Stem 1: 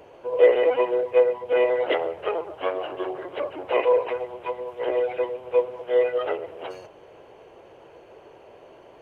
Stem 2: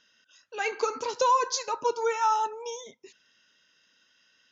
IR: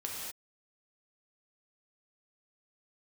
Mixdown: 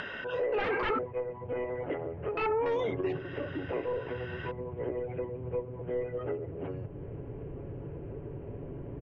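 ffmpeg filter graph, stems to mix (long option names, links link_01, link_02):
-filter_complex "[0:a]lowshelf=frequency=410:gain=10.5,aecho=1:1:7.1:0.33,asubboost=boost=9.5:cutoff=230,volume=-9dB[link_01];[1:a]aeval=exprs='0.188*sin(PI/2*7.08*val(0)/0.188)':channel_layout=same,volume=-3.5dB,asplit=3[link_02][link_03][link_04];[link_02]atrim=end=0.99,asetpts=PTS-STARTPTS,afade=type=out:start_time=0.986:duration=0.004:curve=hsin[link_05];[link_03]atrim=start=0.99:end=2.37,asetpts=PTS-STARTPTS,volume=0[link_06];[link_04]atrim=start=2.37,asetpts=PTS-STARTPTS,afade=type=in:duration=0.004:curve=hsin[link_07];[link_05][link_06][link_07]concat=n=3:v=0:a=1,asplit=2[link_08][link_09];[link_09]apad=whole_len=397673[link_10];[link_01][link_10]sidechaingate=range=-8dB:threshold=-41dB:ratio=16:detection=peak[link_11];[link_11][link_08]amix=inputs=2:normalize=0,lowpass=frequency=2300:width=0.5412,lowpass=frequency=2300:width=1.3066,acompressor=mode=upward:threshold=-28dB:ratio=2.5,alimiter=limit=-23.5dB:level=0:latency=1:release=18"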